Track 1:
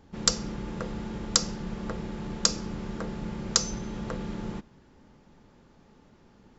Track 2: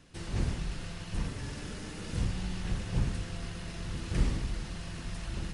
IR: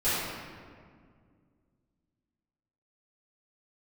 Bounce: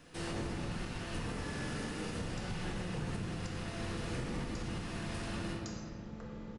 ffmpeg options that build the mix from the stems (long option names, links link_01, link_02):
-filter_complex "[0:a]alimiter=limit=-13dB:level=0:latency=1:release=423,adelay=2100,volume=-20dB,asplit=2[link_01][link_02];[link_02]volume=-7.5dB[link_03];[1:a]lowpass=frequency=1500:poles=1,aemphasis=mode=production:type=bsi,volume=2.5dB,asplit=2[link_04][link_05];[link_05]volume=-8dB[link_06];[2:a]atrim=start_sample=2205[link_07];[link_03][link_06]amix=inputs=2:normalize=0[link_08];[link_08][link_07]afir=irnorm=-1:irlink=0[link_09];[link_01][link_04][link_09]amix=inputs=3:normalize=0,alimiter=level_in=5dB:limit=-24dB:level=0:latency=1:release=361,volume=-5dB"